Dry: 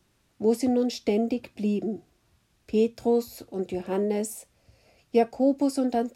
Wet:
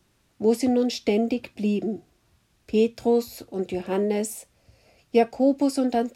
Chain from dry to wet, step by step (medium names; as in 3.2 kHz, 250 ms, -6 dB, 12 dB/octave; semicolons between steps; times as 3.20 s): dynamic bell 2.8 kHz, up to +4 dB, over -48 dBFS, Q 0.82; trim +2 dB